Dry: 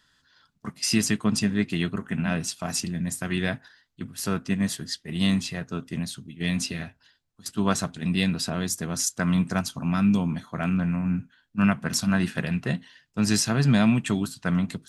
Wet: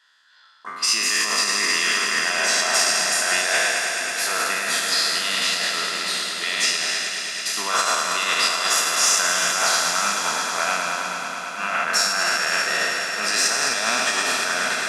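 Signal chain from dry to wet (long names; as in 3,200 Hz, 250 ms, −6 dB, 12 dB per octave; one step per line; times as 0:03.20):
peak hold with a decay on every bin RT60 2.25 s
mid-hump overdrive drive 10 dB, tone 3,700 Hz, clips at −3.5 dBFS
brickwall limiter −14.5 dBFS, peak gain reduction 9.5 dB
high-pass filter 670 Hz 12 dB per octave
on a send: echo that builds up and dies away 107 ms, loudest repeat 5, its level −11 dB
on the sum: expander for the loud parts 1.5 to 1, over −36 dBFS
level +5.5 dB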